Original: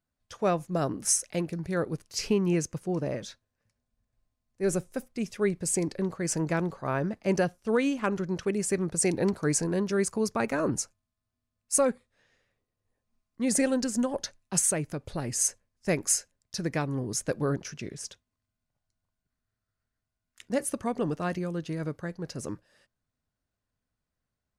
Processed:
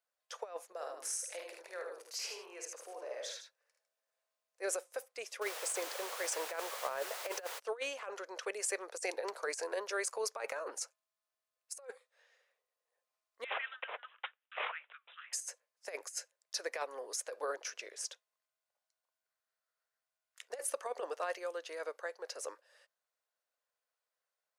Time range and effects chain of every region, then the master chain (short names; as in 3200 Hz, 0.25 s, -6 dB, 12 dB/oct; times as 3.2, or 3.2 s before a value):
0.72–4.62 compressor, threshold -36 dBFS + tapped delay 51/77/153 ms -5/-4.5/-10 dB
5.41–7.58 high shelf 7200 Hz -3.5 dB + added noise pink -40 dBFS
13.44–15.33 steep high-pass 1200 Hz 96 dB/oct + flange 1.4 Hz, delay 3.2 ms, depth 2 ms, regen -80% + careless resampling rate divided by 6×, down none, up filtered
whole clip: elliptic high-pass 490 Hz, stop band 70 dB; negative-ratio compressor -33 dBFS, ratio -0.5; gain -3.5 dB